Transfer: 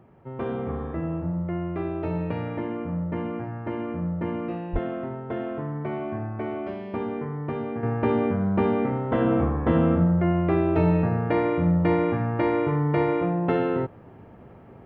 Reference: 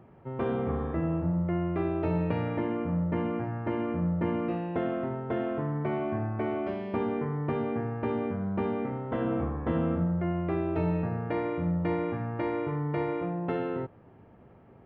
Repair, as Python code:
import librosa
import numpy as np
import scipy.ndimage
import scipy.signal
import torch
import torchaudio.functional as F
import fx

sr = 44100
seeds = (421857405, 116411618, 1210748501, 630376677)

y = fx.fix_deplosive(x, sr, at_s=(4.72,))
y = fx.fix_level(y, sr, at_s=7.83, step_db=-7.5)